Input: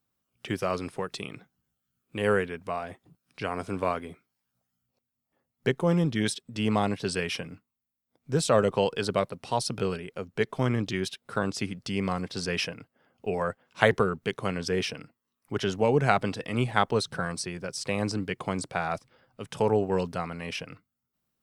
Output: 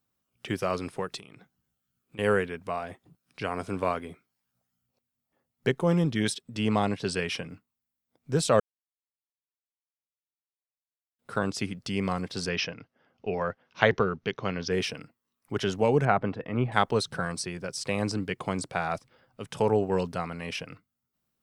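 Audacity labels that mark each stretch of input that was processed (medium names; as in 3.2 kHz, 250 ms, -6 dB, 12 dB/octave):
1.170000	2.190000	compression, threshold -45 dBFS
6.600000	7.500000	Bessel low-pass 9.9 kHz
8.600000	11.190000	mute
12.490000	14.710000	elliptic low-pass 6.1 kHz
16.050000	16.720000	low-pass 1.7 kHz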